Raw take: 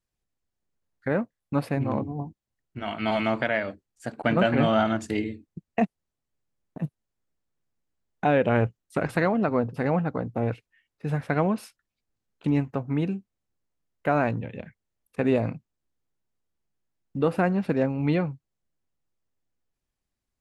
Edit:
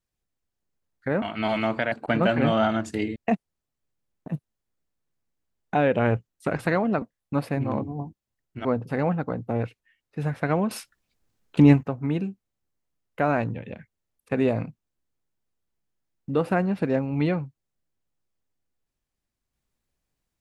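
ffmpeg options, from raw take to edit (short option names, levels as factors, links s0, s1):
-filter_complex "[0:a]asplit=8[s0][s1][s2][s3][s4][s5][s6][s7];[s0]atrim=end=1.222[s8];[s1]atrim=start=2.848:end=3.552[s9];[s2]atrim=start=4.078:end=5.322[s10];[s3]atrim=start=5.658:end=9.522[s11];[s4]atrim=start=1.218:end=2.852[s12];[s5]atrim=start=9.518:end=11.582[s13];[s6]atrim=start=11.578:end=12.702,asetpts=PTS-STARTPTS,volume=2.82[s14];[s7]atrim=start=12.698[s15];[s8][s9]acrossfade=d=0.004:c1=hsin:c2=hsin[s16];[s16][s10]acrossfade=d=0.004:c1=hsin:c2=hsin[s17];[s17][s11]acrossfade=d=0.004:c1=hsin:c2=hsin[s18];[s18][s12]acrossfade=d=0.004:c1=hsin:c2=hsin[s19];[s19][s13]acrossfade=d=0.004:c1=hsin:c2=hsin[s20];[s20][s14]acrossfade=d=0.004:c1=hsin:c2=hsin[s21];[s21][s15]acrossfade=d=0.004:c1=hsin:c2=hsin"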